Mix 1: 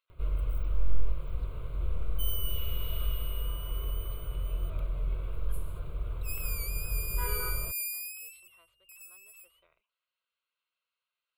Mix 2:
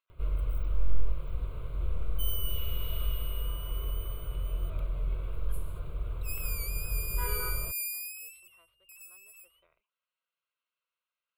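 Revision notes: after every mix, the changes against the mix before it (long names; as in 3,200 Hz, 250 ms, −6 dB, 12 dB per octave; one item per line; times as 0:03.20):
speech: add high-frequency loss of the air 200 metres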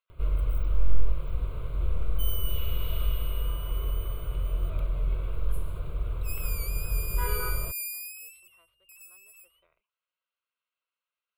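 first sound +4.0 dB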